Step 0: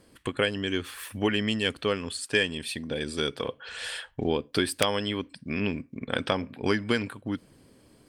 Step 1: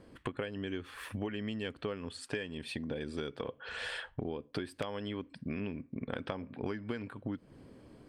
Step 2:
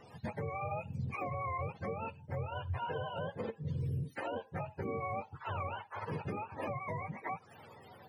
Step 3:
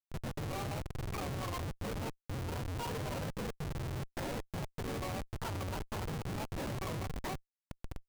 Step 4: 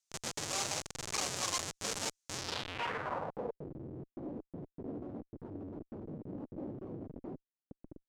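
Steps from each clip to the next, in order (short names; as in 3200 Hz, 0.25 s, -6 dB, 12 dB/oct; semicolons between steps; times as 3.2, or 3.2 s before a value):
LPF 1500 Hz 6 dB/oct; compressor 6:1, threshold -38 dBFS, peak gain reduction 16.5 dB; gain +3 dB
spectrum mirrored in octaves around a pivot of 480 Hz; limiter -34 dBFS, peak gain reduction 9 dB; gain +4.5 dB
compressor 4:1, threshold -45 dBFS, peak gain reduction 10.5 dB; Schmitt trigger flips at -45.5 dBFS; gain +10 dB
low-pass sweep 6500 Hz -> 300 Hz, 2.33–3.73; RIAA curve recording; Doppler distortion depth 0.46 ms; gain +1.5 dB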